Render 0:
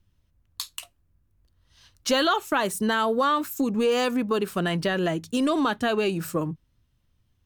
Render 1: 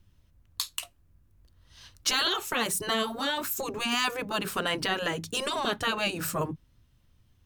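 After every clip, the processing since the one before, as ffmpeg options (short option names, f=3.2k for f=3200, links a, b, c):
-filter_complex "[0:a]afftfilt=real='re*lt(hypot(re,im),0.251)':imag='im*lt(hypot(re,im),0.251)':win_size=1024:overlap=0.75,asplit=2[a][b];[b]alimiter=limit=-24dB:level=0:latency=1:release=312,volume=-3dB[c];[a][c]amix=inputs=2:normalize=0"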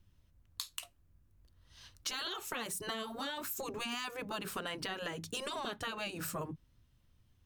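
-af "acompressor=threshold=-31dB:ratio=6,volume=-5dB"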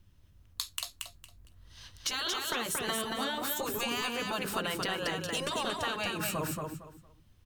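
-af "aecho=1:1:229|458|687:0.668|0.154|0.0354,volume=5dB"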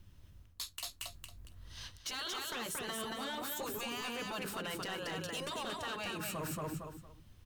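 -af "areverse,acompressor=threshold=-40dB:ratio=6,areverse,asoftclip=type=hard:threshold=-38dB,volume=3.5dB"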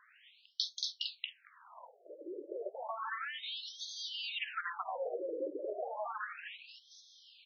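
-af "acompressor=threshold=-47dB:ratio=6,afftfilt=real='re*between(b*sr/1024,410*pow(4600/410,0.5+0.5*sin(2*PI*0.32*pts/sr))/1.41,410*pow(4600/410,0.5+0.5*sin(2*PI*0.32*pts/sr))*1.41)':imag='im*between(b*sr/1024,410*pow(4600/410,0.5+0.5*sin(2*PI*0.32*pts/sr))/1.41,410*pow(4600/410,0.5+0.5*sin(2*PI*0.32*pts/sr))*1.41)':win_size=1024:overlap=0.75,volume=16.5dB"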